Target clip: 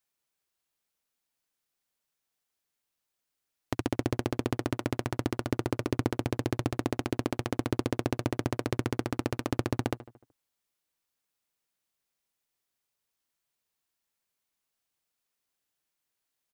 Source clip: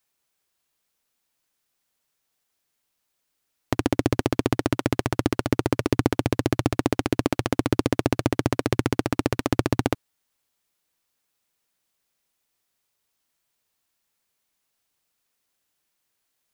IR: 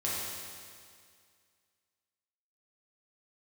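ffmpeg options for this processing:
-filter_complex "[0:a]asplit=2[a][b];[b]adelay=75,lowpass=f=2.3k:p=1,volume=-15.5dB,asplit=2[c][d];[d]adelay=75,lowpass=f=2.3k:p=1,volume=0.54,asplit=2[e][f];[f]adelay=75,lowpass=f=2.3k:p=1,volume=0.54,asplit=2[g][h];[h]adelay=75,lowpass=f=2.3k:p=1,volume=0.54,asplit=2[i][j];[j]adelay=75,lowpass=f=2.3k:p=1,volume=0.54[k];[c][e][g][i][k]amix=inputs=5:normalize=0[l];[a][l]amix=inputs=2:normalize=0,volume=-7.5dB"

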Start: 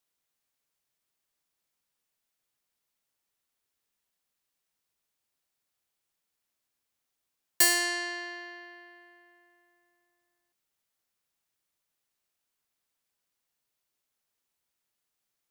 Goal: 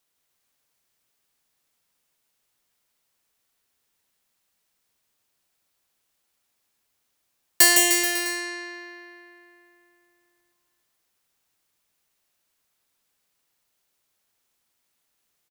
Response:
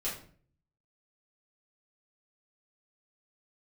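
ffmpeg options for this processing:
-af "aecho=1:1:160|304|433.6|550.2|655.2:0.631|0.398|0.251|0.158|0.1,volume=6.5dB"

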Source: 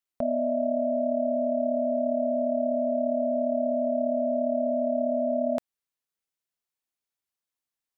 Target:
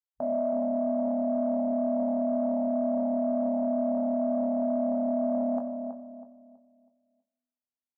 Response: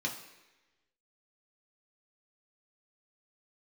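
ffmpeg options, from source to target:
-filter_complex "[0:a]afwtdn=0.0224,highpass=120,equalizer=f=840:w=1.5:g=12,alimiter=limit=-18dB:level=0:latency=1:release=15,asplit=2[a][b];[b]adelay=20,volume=-6dB[c];[a][c]amix=inputs=2:normalize=0,asplit=2[d][e];[e]adelay=324,lowpass=f=990:p=1,volume=-5.5dB,asplit=2[f][g];[g]adelay=324,lowpass=f=990:p=1,volume=0.38,asplit=2[h][i];[i]adelay=324,lowpass=f=990:p=1,volume=0.38,asplit=2[j][k];[k]adelay=324,lowpass=f=990:p=1,volume=0.38,asplit=2[l][m];[m]adelay=324,lowpass=f=990:p=1,volume=0.38[n];[d][f][h][j][l][n]amix=inputs=6:normalize=0,asplit=2[o][p];[1:a]atrim=start_sample=2205,asetrate=38808,aresample=44100[q];[p][q]afir=irnorm=-1:irlink=0,volume=-11dB[r];[o][r]amix=inputs=2:normalize=0,volume=-4dB"

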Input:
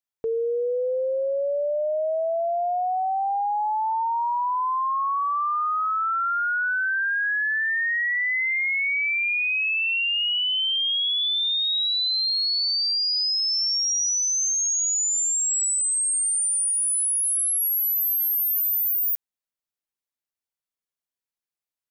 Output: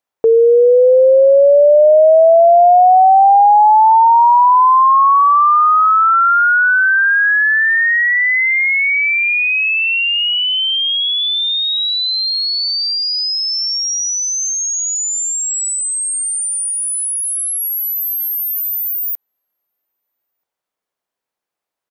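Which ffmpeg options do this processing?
-filter_complex "[0:a]equalizer=f=660:w=0.36:g=13.5,asplit=2[a][b];[b]adelay=1283,volume=-29dB,highshelf=f=4k:g=-28.9[c];[a][c]amix=inputs=2:normalize=0,volume=3.5dB"

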